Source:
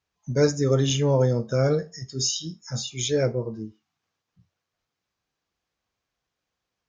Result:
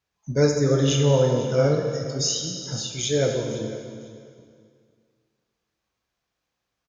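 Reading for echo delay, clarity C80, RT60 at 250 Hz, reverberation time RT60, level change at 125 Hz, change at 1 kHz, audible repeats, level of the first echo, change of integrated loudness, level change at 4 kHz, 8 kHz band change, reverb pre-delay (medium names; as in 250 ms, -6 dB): 501 ms, 5.0 dB, 2.2 s, 2.2 s, +1.5 dB, +2.0 dB, 2, -16.5 dB, +1.5 dB, +2.0 dB, no reading, 8 ms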